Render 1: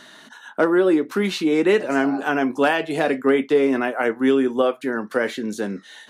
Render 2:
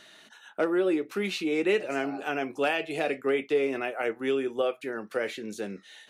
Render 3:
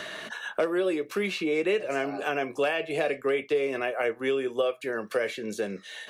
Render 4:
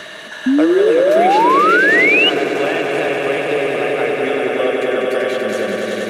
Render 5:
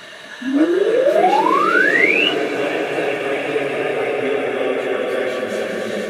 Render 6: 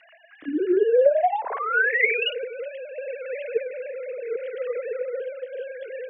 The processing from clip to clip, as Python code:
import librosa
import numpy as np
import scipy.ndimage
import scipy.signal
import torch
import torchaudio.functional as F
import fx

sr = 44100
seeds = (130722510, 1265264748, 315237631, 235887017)

y1 = fx.graphic_eq_31(x, sr, hz=(160, 250, 1000, 1600, 2500), db=(-4, -10, -8, -4, 7))
y1 = y1 * 10.0 ** (-7.0 / 20.0)
y2 = y1 + 0.38 * np.pad(y1, (int(1.8 * sr / 1000.0), 0))[:len(y1)]
y2 = fx.band_squash(y2, sr, depth_pct=70)
y3 = fx.echo_swell(y2, sr, ms=96, loudest=5, wet_db=-5.0)
y3 = fx.spec_paint(y3, sr, seeds[0], shape='rise', start_s=0.46, length_s=1.84, low_hz=250.0, high_hz=3000.0, level_db=-18.0)
y3 = y3 * 10.0 ** (5.5 / 20.0)
y4 = fx.phase_scramble(y3, sr, seeds[1], window_ms=100)
y4 = y4 * 10.0 ** (-3.0 / 20.0)
y5 = fx.sine_speech(y4, sr)
y5 = fx.rotary(y5, sr, hz=0.8)
y5 = y5 * 10.0 ** (-5.0 / 20.0)